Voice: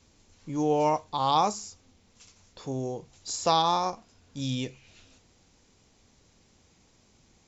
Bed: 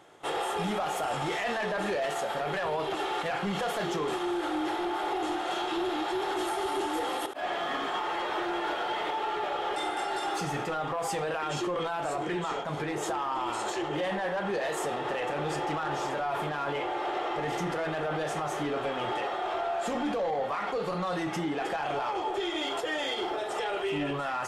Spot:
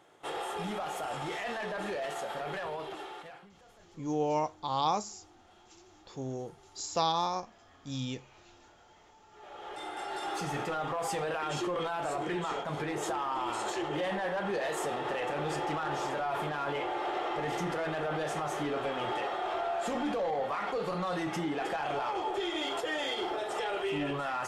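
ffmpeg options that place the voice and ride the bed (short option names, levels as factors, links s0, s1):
-filter_complex "[0:a]adelay=3500,volume=0.531[s0];[1:a]volume=11.9,afade=t=out:st=2.54:d=0.96:silence=0.0668344,afade=t=in:st=9.31:d=1.3:silence=0.0446684[s1];[s0][s1]amix=inputs=2:normalize=0"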